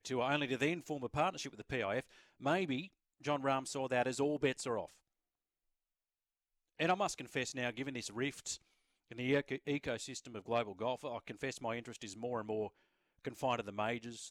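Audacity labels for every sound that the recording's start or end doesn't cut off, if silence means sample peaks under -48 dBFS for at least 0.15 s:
2.410000	2.870000	sound
3.240000	4.860000	sound
6.790000	8.560000	sound
9.110000	12.680000	sound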